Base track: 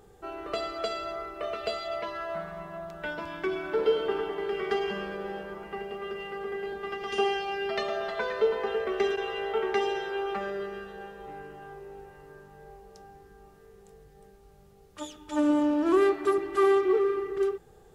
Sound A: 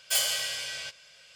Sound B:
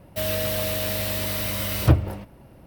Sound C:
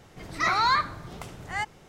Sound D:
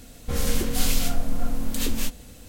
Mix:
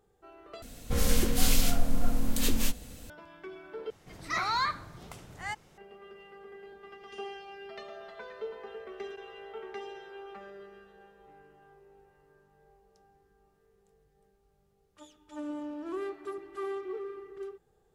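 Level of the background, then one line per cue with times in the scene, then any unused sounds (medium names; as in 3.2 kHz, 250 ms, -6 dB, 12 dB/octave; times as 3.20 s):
base track -14 dB
0.62 s: replace with D -1.5 dB
3.90 s: replace with C -7 dB + treble shelf 5.4 kHz +4.5 dB
not used: A, B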